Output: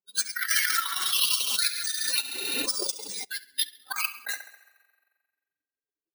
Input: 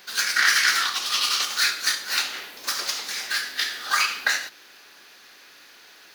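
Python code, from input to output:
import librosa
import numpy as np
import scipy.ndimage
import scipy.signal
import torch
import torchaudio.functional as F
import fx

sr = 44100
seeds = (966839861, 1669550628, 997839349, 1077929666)

y = fx.bin_expand(x, sr, power=3.0)
y = fx.low_shelf(y, sr, hz=65.0, db=-10.5)
y = fx.echo_thinned(y, sr, ms=68, feedback_pct=55, hz=170.0, wet_db=-12.0)
y = fx.rev_spring(y, sr, rt60_s=1.5, pass_ms=(42,), chirp_ms=60, drr_db=18.5)
y = np.repeat(scipy.signal.resample_poly(y, 1, 3), 3)[:len(y)]
y = fx.transient(y, sr, attack_db=4, sustain_db=-7)
y = fx.over_compress(y, sr, threshold_db=-27.0, ratio=-0.5)
y = fx.high_shelf(y, sr, hz=9200.0, db=8.5)
y = fx.pre_swell(y, sr, db_per_s=27.0, at=(0.48, 3.23), fade=0.02)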